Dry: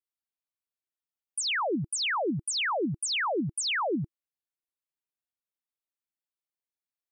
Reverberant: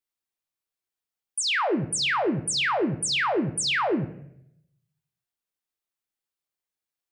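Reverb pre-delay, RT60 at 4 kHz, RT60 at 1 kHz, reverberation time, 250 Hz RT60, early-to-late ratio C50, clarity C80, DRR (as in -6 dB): 3 ms, 0.50 s, 0.65 s, 0.75 s, 0.85 s, 13.5 dB, 16.0 dB, 8.5 dB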